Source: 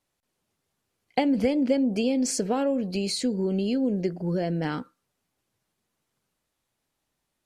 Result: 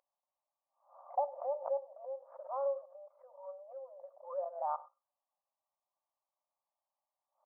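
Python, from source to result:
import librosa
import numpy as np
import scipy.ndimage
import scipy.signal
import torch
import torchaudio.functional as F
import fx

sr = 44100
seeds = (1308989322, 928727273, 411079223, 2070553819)

y = fx.peak_eq(x, sr, hz=770.0, db=-12.5, octaves=0.63, at=(1.83, 4.55))
y = fx.level_steps(y, sr, step_db=15)
y = scipy.signal.sosfilt(scipy.signal.cheby1(6, 3, 1200.0, 'lowpass', fs=sr, output='sos'), y)
y = fx.add_hum(y, sr, base_hz=50, snr_db=21)
y = fx.brickwall_highpass(y, sr, low_hz=530.0)
y = y + 10.0 ** (-21.5 / 20.0) * np.pad(y, (int(99 * sr / 1000.0), 0))[:len(y)]
y = fx.pre_swell(y, sr, db_per_s=130.0)
y = y * 10.0 ** (5.5 / 20.0)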